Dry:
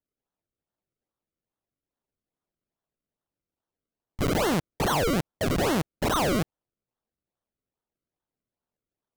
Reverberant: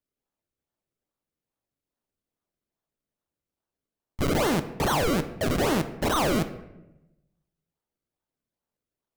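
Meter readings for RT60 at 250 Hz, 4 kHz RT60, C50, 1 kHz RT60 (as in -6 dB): 1.2 s, 0.60 s, 12.5 dB, 0.85 s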